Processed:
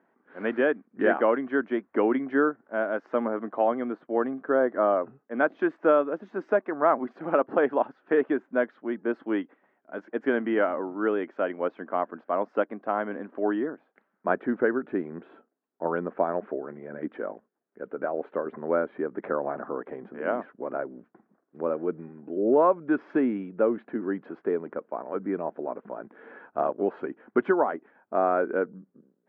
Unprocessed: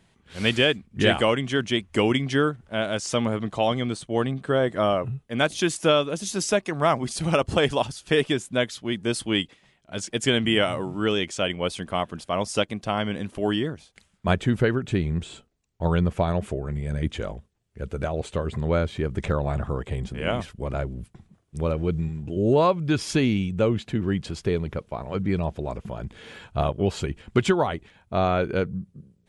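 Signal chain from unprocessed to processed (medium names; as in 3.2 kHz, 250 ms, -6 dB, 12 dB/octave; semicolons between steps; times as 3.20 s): elliptic band-pass 260–1600 Hz, stop band 80 dB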